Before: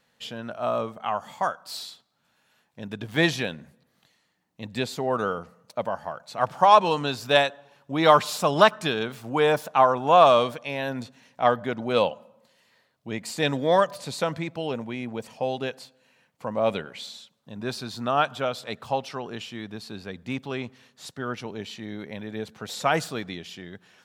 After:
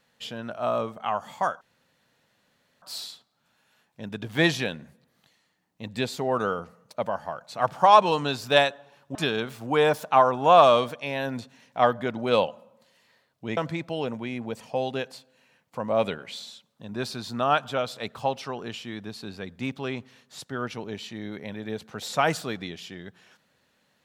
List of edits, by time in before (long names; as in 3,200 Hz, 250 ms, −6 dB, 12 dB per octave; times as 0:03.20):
0:01.61: splice in room tone 1.21 s
0:07.94–0:08.78: remove
0:13.20–0:14.24: remove